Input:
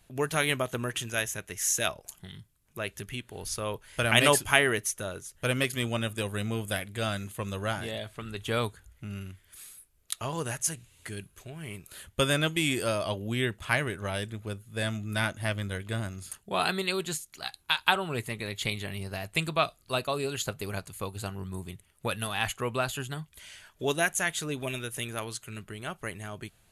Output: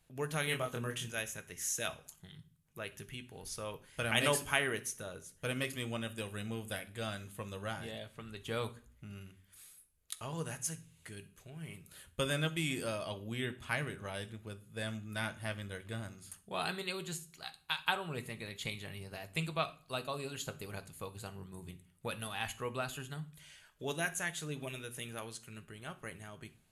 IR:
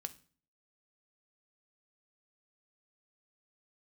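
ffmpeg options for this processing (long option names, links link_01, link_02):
-filter_complex "[0:a]asettb=1/sr,asplit=3[link_01][link_02][link_03];[link_01]atrim=end=0.454[link_04];[link_02]atrim=start=0.45:end=1.08,asetpts=PTS-STARTPTS,afade=type=in:duration=0.004:curve=qsin,afade=type=out:start_time=0.626:duration=0.004:curve=qsin,asplit=2[link_05][link_06];[link_06]adelay=25,volume=-3dB[link_07];[link_05][link_07]amix=inputs=2:normalize=0,atrim=end_sample=27783[link_08];[link_03]atrim=start=1.076[link_09];[link_04][link_08]acrossfade=duration=0.004:curve1=hsin:curve2=qsin[link_10];[link_10][link_09]acrossfade=duration=0.004:curve1=qsin:curve2=hsin[link_11];[1:a]atrim=start_sample=2205,asetrate=42777,aresample=44100[link_12];[link_11][link_12]afir=irnorm=-1:irlink=0,volume=-6dB"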